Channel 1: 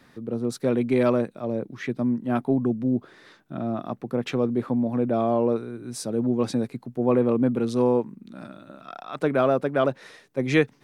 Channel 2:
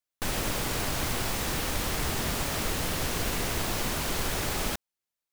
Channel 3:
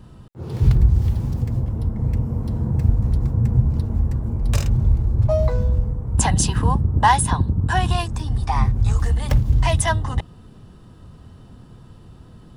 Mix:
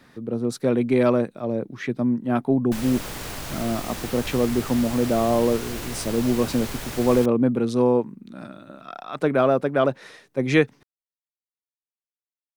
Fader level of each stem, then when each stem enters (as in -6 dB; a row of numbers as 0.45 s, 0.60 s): +2.0 dB, -3.5 dB, mute; 0.00 s, 2.50 s, mute